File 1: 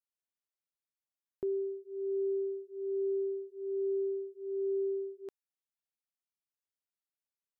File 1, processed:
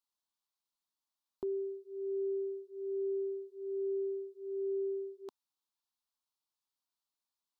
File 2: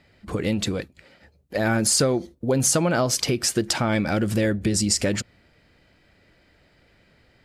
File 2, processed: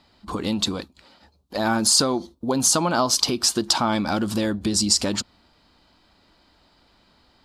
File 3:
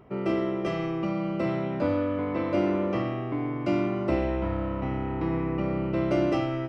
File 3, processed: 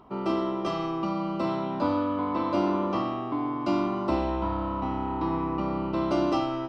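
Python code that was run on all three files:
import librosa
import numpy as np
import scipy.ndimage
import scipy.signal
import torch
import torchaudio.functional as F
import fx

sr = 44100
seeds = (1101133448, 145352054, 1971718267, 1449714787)

y = fx.graphic_eq(x, sr, hz=(125, 250, 500, 1000, 2000, 4000), db=(-9, 4, -7, 12, -11, 9))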